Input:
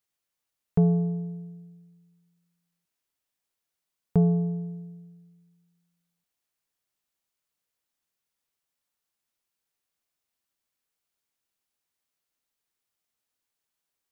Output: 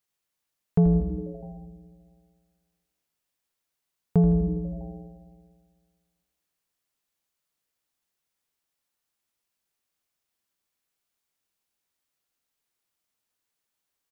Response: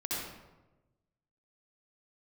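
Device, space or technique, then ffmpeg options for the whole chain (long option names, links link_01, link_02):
compressed reverb return: -filter_complex "[0:a]asplit=2[link_01][link_02];[1:a]atrim=start_sample=2205[link_03];[link_02][link_03]afir=irnorm=-1:irlink=0,acompressor=threshold=-18dB:ratio=6,volume=-14dB[link_04];[link_01][link_04]amix=inputs=2:normalize=0,asettb=1/sr,asplit=3[link_05][link_06][link_07];[link_05]atrim=end=1.004[link_08];[link_06]atrim=start=1:end=1.43,asetpts=PTS-STARTPTS,afade=type=in:duration=0.004:curve=qsin,afade=type=out:start_time=0.426:duration=0.004:curve=qsin,lowshelf=frequency=460:gain=-9.5[link_09];[link_07]atrim=start=1.426[link_10];[link_08][link_09]acrossfade=duration=0.004:curve1=hsin:curve2=qsin[link_11];[link_11][link_10]acrossfade=duration=0.004:curve1=qsin:curve2=hsin,asplit=9[link_12][link_13][link_14][link_15][link_16][link_17][link_18][link_19][link_20];[link_13]adelay=81,afreqshift=-120,volume=-11dB[link_21];[link_14]adelay=162,afreqshift=-240,volume=-14.7dB[link_22];[link_15]adelay=243,afreqshift=-360,volume=-18.5dB[link_23];[link_16]adelay=324,afreqshift=-480,volume=-22.2dB[link_24];[link_17]adelay=405,afreqshift=-600,volume=-26dB[link_25];[link_18]adelay=486,afreqshift=-720,volume=-29.7dB[link_26];[link_19]adelay=567,afreqshift=-840,volume=-33.5dB[link_27];[link_20]adelay=648,afreqshift=-960,volume=-37.2dB[link_28];[link_12][link_21][link_22][link_23][link_24][link_25][link_26][link_27][link_28]amix=inputs=9:normalize=0"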